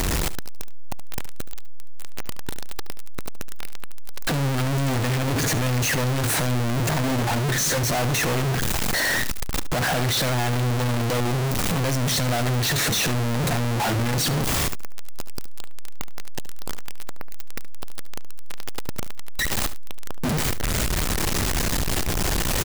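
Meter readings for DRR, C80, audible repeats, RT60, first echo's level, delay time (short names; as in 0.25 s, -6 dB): none, none, 1, none, -15.0 dB, 72 ms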